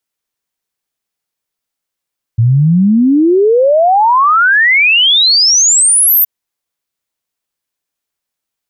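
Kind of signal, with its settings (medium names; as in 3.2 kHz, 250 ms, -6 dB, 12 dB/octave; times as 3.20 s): log sweep 110 Hz -> 14 kHz 3.87 s -5.5 dBFS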